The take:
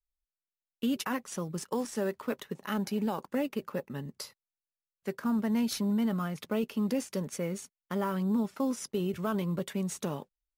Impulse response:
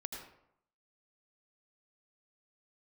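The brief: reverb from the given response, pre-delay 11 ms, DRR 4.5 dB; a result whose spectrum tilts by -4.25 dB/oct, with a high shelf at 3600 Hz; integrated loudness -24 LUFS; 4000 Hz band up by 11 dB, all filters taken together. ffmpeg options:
-filter_complex "[0:a]highshelf=f=3.6k:g=9,equalizer=f=4k:t=o:g=8,asplit=2[a][b];[1:a]atrim=start_sample=2205,adelay=11[c];[b][c]afir=irnorm=-1:irlink=0,volume=-3.5dB[d];[a][d]amix=inputs=2:normalize=0,volume=6dB"

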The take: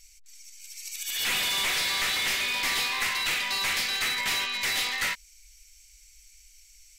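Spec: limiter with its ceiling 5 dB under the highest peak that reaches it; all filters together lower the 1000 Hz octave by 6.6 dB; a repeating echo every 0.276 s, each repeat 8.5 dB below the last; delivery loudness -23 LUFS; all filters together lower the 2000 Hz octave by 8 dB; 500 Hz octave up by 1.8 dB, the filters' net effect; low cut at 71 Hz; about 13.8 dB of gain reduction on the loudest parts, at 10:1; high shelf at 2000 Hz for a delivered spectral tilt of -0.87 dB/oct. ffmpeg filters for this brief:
-af "highpass=71,equalizer=f=500:t=o:g=4.5,equalizer=f=1k:t=o:g=-6.5,highshelf=f=2k:g=-3,equalizer=f=2k:t=o:g=-6.5,acompressor=threshold=-44dB:ratio=10,alimiter=level_in=15.5dB:limit=-24dB:level=0:latency=1,volume=-15.5dB,aecho=1:1:276|552|828|1104:0.376|0.143|0.0543|0.0206,volume=23dB"

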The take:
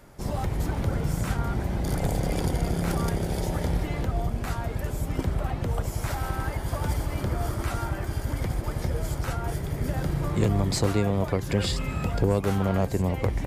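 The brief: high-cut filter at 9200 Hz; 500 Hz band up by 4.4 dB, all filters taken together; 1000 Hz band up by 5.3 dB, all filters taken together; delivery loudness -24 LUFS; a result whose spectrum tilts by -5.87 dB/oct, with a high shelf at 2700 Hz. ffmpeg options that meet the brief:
-af "lowpass=9.2k,equalizer=f=500:t=o:g=4,equalizer=f=1k:t=o:g=5,highshelf=f=2.7k:g=4.5,volume=2.5dB"

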